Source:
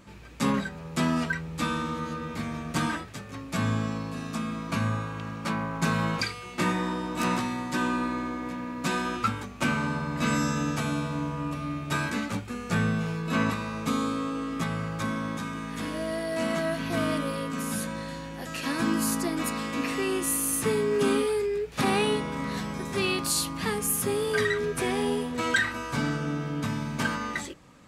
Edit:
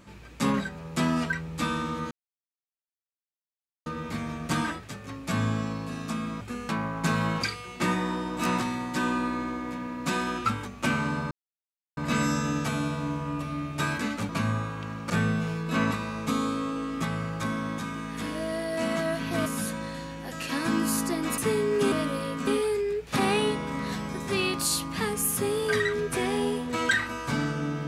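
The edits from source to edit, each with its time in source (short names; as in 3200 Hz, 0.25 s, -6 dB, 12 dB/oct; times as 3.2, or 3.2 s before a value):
2.11 insert silence 1.75 s
4.66–5.47 swap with 12.41–12.69
10.09 insert silence 0.66 s
17.05–17.6 move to 21.12
19.52–20.58 cut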